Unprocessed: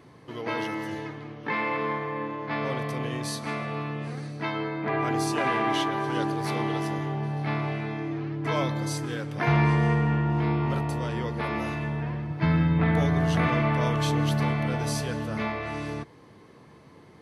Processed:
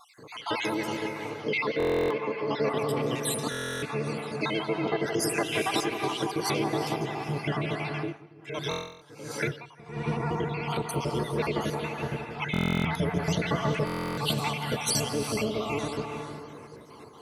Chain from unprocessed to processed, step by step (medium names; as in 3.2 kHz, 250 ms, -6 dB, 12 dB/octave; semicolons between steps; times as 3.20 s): random holes in the spectrogram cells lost 61%; small resonant body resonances 440/2700 Hz, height 6 dB; compression 4:1, threshold -27 dBFS, peak gain reduction 7 dB; tilt EQ +2 dB/octave; bucket-brigade echo 169 ms, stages 2048, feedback 55%, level -7 dB; vibrato 13 Hz 63 cents; band-stop 1.8 kHz, Q 7.5; gated-style reverb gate 460 ms rising, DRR 8.5 dB; dynamic bell 1.3 kHz, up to -6 dB, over -43 dBFS, Q 0.8; buffer glitch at 1.78/3.50/8.69/12.52/13.85 s, samples 1024, times 13; 7.97–10.20 s: logarithmic tremolo 1.4 Hz, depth 22 dB; trim +7 dB